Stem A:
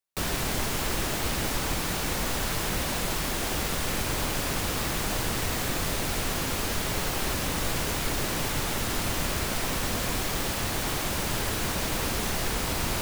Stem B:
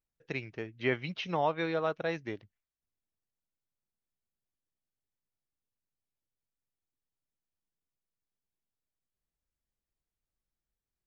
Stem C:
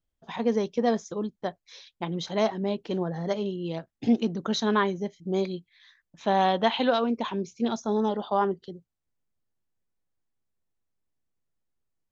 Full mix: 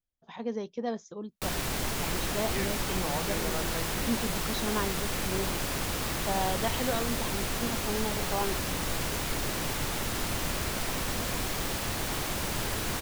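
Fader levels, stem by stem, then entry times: −3.0, −6.5, −8.5 decibels; 1.25, 1.70, 0.00 seconds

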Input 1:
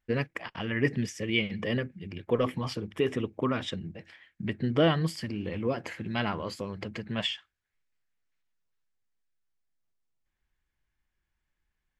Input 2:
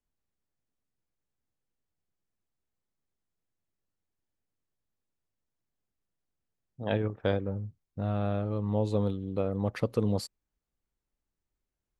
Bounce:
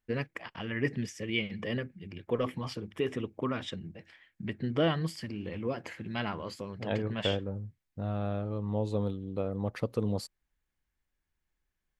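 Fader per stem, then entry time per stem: −4.0, −3.0 decibels; 0.00, 0.00 seconds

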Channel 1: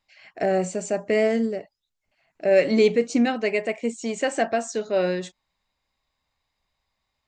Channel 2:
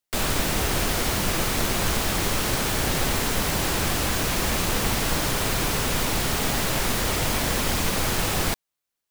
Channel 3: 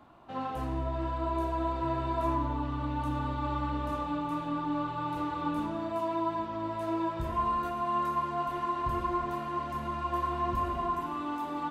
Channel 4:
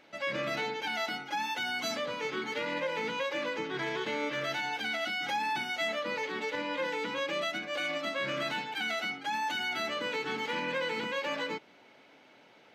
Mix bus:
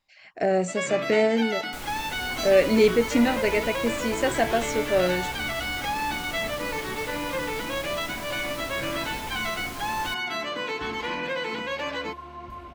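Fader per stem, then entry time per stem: −0.5, −14.0, −9.5, +3.0 decibels; 0.00, 1.60, 1.95, 0.55 seconds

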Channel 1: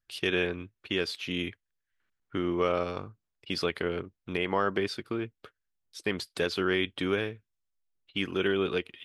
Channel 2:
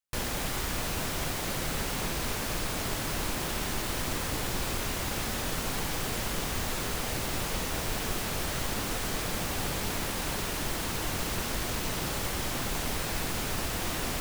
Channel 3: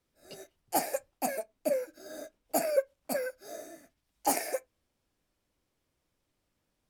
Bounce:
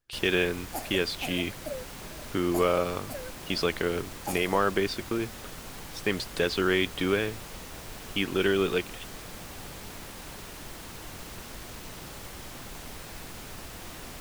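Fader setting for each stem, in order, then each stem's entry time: +2.5, −10.0, −7.5 decibels; 0.00, 0.00, 0.00 seconds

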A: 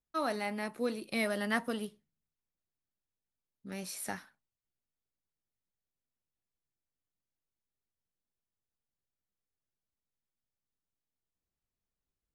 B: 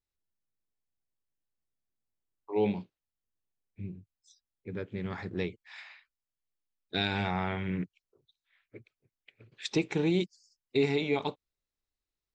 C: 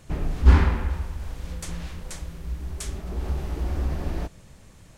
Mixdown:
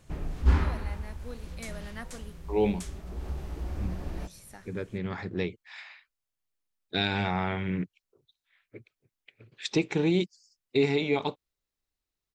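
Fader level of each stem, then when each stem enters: −10.5, +2.5, −7.5 decibels; 0.45, 0.00, 0.00 seconds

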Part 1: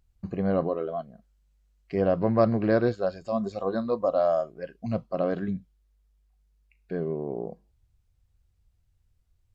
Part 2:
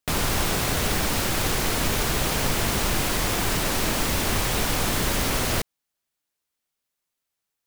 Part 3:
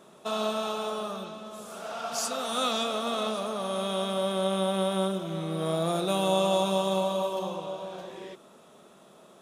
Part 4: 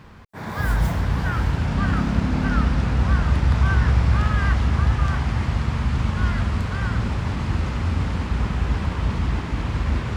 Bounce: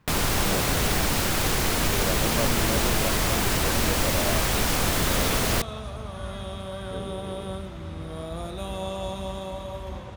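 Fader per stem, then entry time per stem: −9.0, 0.0, −8.0, −15.5 decibels; 0.00, 0.00, 2.50, 0.00 seconds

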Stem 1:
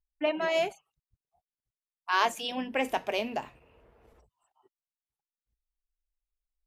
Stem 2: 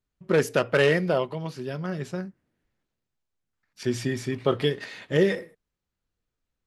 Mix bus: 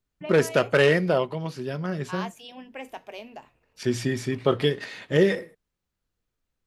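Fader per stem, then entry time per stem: −9.5, +1.5 decibels; 0.00, 0.00 seconds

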